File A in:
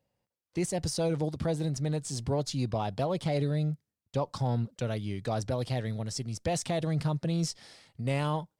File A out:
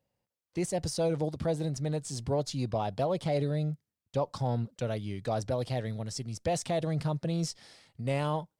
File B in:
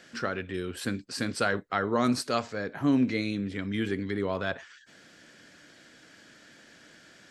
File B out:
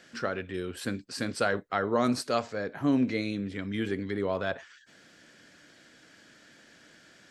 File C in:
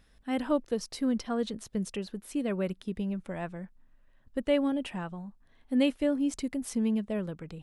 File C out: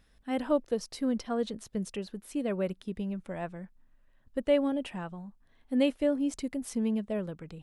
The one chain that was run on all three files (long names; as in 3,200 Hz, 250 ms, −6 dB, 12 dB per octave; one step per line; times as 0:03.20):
dynamic equaliser 590 Hz, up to +4 dB, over −39 dBFS, Q 1.3
level −2 dB